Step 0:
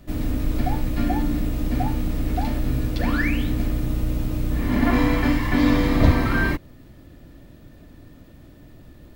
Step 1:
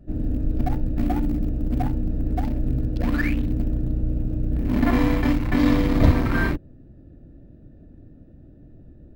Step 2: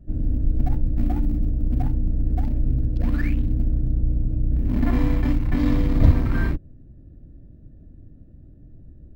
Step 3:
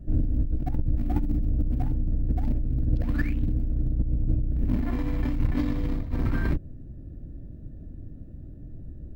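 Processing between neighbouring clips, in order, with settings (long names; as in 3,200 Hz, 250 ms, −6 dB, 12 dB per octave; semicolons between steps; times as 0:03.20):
adaptive Wiener filter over 41 samples
low-shelf EQ 190 Hz +11.5 dB; level −7.5 dB
compressor whose output falls as the input rises −24 dBFS, ratio −1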